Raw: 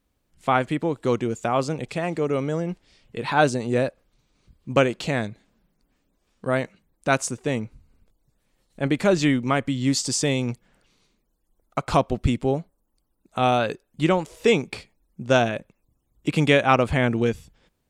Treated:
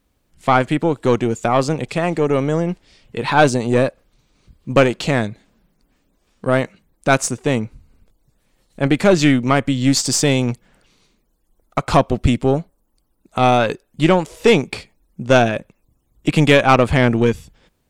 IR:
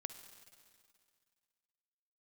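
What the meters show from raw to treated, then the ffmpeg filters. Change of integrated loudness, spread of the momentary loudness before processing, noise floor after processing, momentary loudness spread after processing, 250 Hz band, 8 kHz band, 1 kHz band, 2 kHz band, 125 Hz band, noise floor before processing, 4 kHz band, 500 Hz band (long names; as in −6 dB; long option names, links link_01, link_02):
+6.0 dB, 13 LU, −66 dBFS, 13 LU, +6.5 dB, +6.5 dB, +6.0 dB, +5.5 dB, +7.0 dB, −73 dBFS, +6.0 dB, +6.0 dB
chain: -af "asoftclip=type=tanh:threshold=-8.5dB,aeval=exprs='0.355*(cos(1*acos(clip(val(0)/0.355,-1,1)))-cos(1*PI/2))+0.0251*(cos(4*acos(clip(val(0)/0.355,-1,1)))-cos(4*PI/2))+0.002*(cos(7*acos(clip(val(0)/0.355,-1,1)))-cos(7*PI/2))':channel_layout=same,volume=7dB"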